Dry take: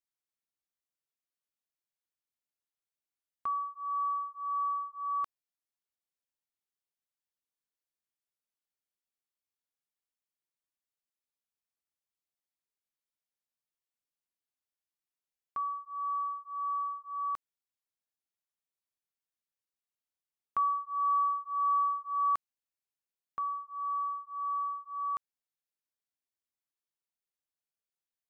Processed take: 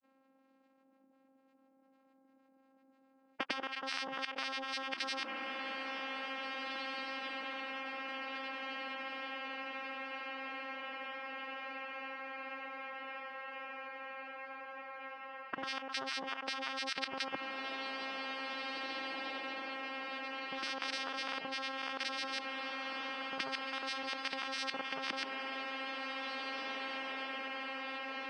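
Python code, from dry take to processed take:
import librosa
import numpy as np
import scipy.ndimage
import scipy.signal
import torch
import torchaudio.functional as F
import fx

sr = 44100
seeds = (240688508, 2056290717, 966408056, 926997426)

p1 = scipy.signal.sosfilt(scipy.signal.butter(2, 1000.0, 'lowpass', fs=sr, output='sos'), x)
p2 = fx.over_compress(p1, sr, threshold_db=-39.0, ratio=-0.5)
p3 = p1 + (p2 * librosa.db_to_amplitude(-1.0))
p4 = fx.granulator(p3, sr, seeds[0], grain_ms=100.0, per_s=20.0, spray_ms=100.0, spread_st=12)
p5 = fx.level_steps(p4, sr, step_db=13)
p6 = fx.vocoder(p5, sr, bands=8, carrier='saw', carrier_hz=267.0)
p7 = p6 + fx.echo_diffused(p6, sr, ms=1928, feedback_pct=52, wet_db=-12, dry=0)
p8 = fx.spectral_comp(p7, sr, ratio=10.0)
y = p8 * librosa.db_to_amplitude(10.0)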